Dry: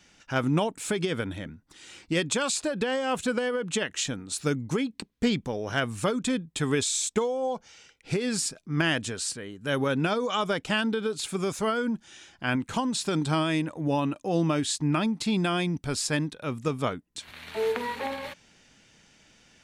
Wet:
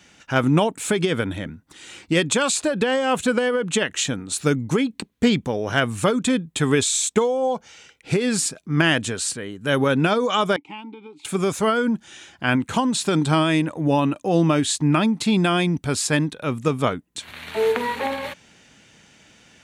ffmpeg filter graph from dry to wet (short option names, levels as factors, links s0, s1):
-filter_complex "[0:a]asettb=1/sr,asplit=3[s0][s1][s2];[s0]atrim=end=10.564[s3];[s1]atrim=start=10.56:end=11.25,asetpts=PTS-STARTPTS,afade=t=in:d=0.004:c=qsin,afade=t=out:st=0.686:d=0.004:c=qsin,asplit=3[s4][s5][s6];[s4]bandpass=f=300:t=q:w=8,volume=1[s7];[s5]bandpass=f=870:t=q:w=8,volume=0.501[s8];[s6]bandpass=f=2240:t=q:w=8,volume=0.355[s9];[s7][s8][s9]amix=inputs=3:normalize=0,equalizer=f=230:w=1.3:g=-5[s10];[s2]atrim=start=11.246[s11];[s3][s10]acrossfade=d=0.004:c1=hsin:c2=qsin[s12];[s12][s11]acrossfade=d=0.004:c1=qsin:c2=hsin,highpass=58,equalizer=f=5100:w=3:g=-4.5,volume=2.24"